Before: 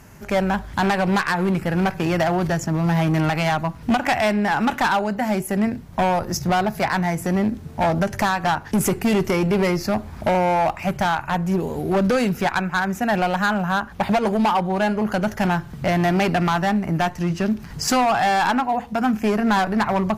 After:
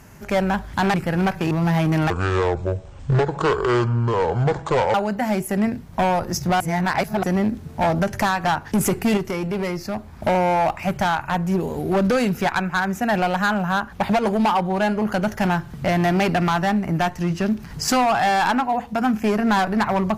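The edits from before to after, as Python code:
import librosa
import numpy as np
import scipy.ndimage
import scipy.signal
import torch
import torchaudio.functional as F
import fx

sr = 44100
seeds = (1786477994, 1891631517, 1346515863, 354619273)

y = fx.edit(x, sr, fx.cut(start_s=0.94, length_s=0.59),
    fx.cut(start_s=2.1, length_s=0.63),
    fx.speed_span(start_s=3.32, length_s=1.62, speed=0.57),
    fx.reverse_span(start_s=6.6, length_s=0.63),
    fx.clip_gain(start_s=9.17, length_s=1.05, db=-5.5), tone=tone)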